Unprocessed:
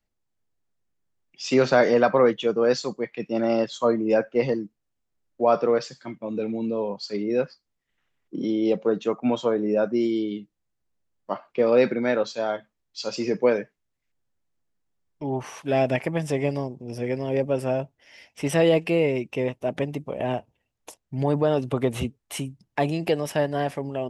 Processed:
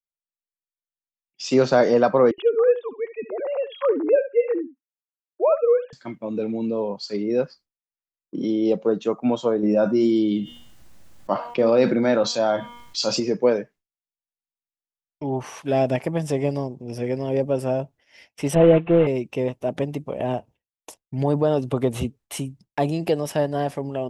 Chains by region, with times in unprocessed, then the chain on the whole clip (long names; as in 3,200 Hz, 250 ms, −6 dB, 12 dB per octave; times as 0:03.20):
0:02.31–0:05.93: three sine waves on the formant tracks + single-tap delay 71 ms −14.5 dB
0:09.63–0:13.20: parametric band 430 Hz −9.5 dB 0.22 octaves + hum removal 239 Hz, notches 15 + envelope flattener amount 50%
0:18.55–0:19.07: variable-slope delta modulation 16 kbit/s + comb filter 5.8 ms, depth 80%
whole clip: dynamic equaliser 2,100 Hz, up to −7 dB, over −42 dBFS, Q 1.1; downward expander −45 dBFS; level +2 dB